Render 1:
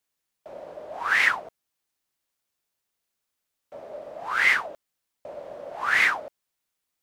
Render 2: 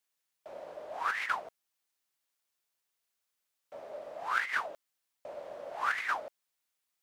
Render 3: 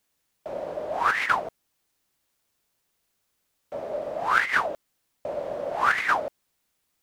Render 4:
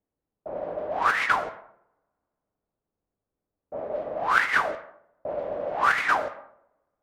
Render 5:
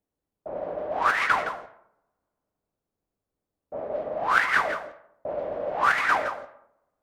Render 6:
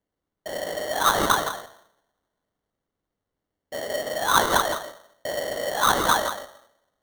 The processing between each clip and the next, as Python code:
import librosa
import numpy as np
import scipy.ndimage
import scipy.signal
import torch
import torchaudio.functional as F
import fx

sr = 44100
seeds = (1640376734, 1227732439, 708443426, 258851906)

y1 = fx.low_shelf(x, sr, hz=430.0, db=-8.5)
y1 = fx.over_compress(y1, sr, threshold_db=-25.0, ratio=-0.5)
y1 = y1 * 10.0 ** (-5.5 / 20.0)
y2 = fx.low_shelf(y1, sr, hz=450.0, db=12.0)
y2 = y2 * 10.0 ** (8.0 / 20.0)
y3 = fx.rev_double_slope(y2, sr, seeds[0], early_s=0.79, late_s=2.5, knee_db=-27, drr_db=9.0)
y3 = fx.env_lowpass(y3, sr, base_hz=590.0, full_db=-20.0)
y4 = y3 + 10.0 ** (-10.5 / 20.0) * np.pad(y3, (int(166 * sr / 1000.0), 0))[:len(y3)]
y5 = fx.sample_hold(y4, sr, seeds[1], rate_hz=2500.0, jitter_pct=0)
y5 = y5 * 10.0 ** (2.0 / 20.0)